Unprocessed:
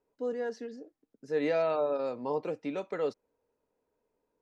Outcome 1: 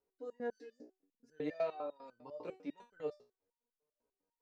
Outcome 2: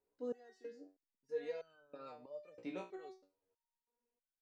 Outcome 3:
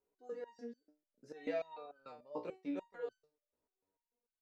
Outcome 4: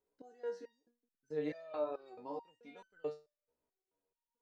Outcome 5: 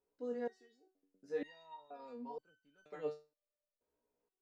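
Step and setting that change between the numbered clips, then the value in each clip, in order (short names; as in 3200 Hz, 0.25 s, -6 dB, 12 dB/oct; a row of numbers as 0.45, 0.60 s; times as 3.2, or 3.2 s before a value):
stepped resonator, rate: 10, 3.1, 6.8, 4.6, 2.1 Hz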